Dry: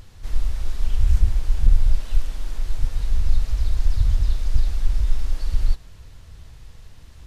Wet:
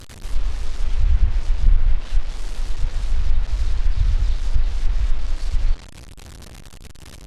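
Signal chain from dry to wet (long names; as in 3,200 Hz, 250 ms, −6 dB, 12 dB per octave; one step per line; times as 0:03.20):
linear delta modulator 64 kbit/s, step −32 dBFS
treble cut that deepens with the level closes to 2,800 Hz, closed at −8.5 dBFS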